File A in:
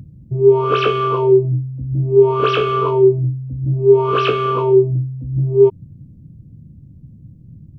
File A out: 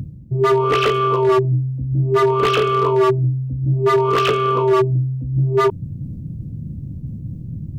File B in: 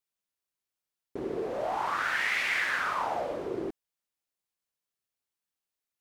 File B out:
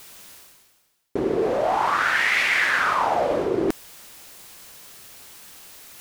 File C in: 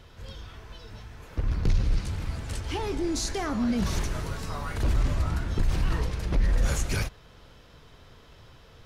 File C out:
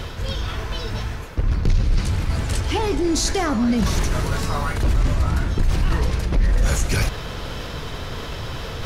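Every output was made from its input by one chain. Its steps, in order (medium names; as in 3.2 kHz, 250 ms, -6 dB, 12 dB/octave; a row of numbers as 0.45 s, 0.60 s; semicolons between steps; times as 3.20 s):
reverse; upward compressor, threshold -18 dBFS; reverse; wavefolder -9.5 dBFS; peak normalisation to -9 dBFS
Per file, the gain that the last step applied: +0.5 dB, +4.5 dB, +5.0 dB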